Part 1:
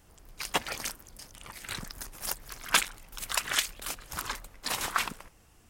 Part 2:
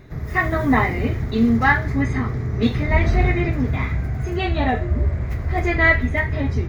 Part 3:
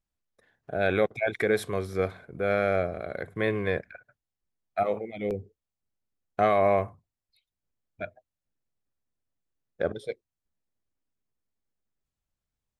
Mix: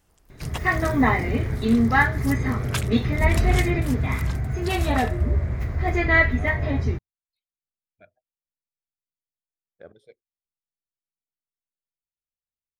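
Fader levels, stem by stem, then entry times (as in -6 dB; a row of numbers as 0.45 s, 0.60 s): -6.0 dB, -2.0 dB, -17.5 dB; 0.00 s, 0.30 s, 0.00 s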